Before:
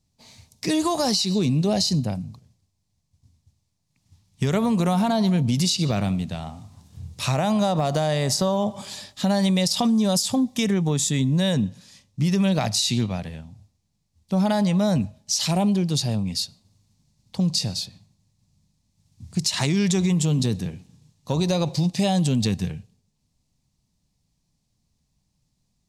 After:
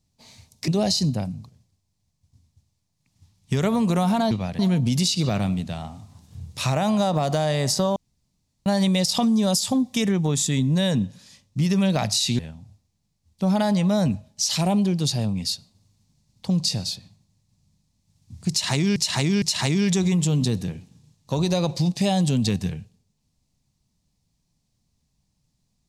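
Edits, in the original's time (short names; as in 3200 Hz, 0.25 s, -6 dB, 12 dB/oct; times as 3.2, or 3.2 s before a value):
0.68–1.58 cut
8.58–9.28 room tone
13.01–13.29 move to 5.21
19.4–19.86 loop, 3 plays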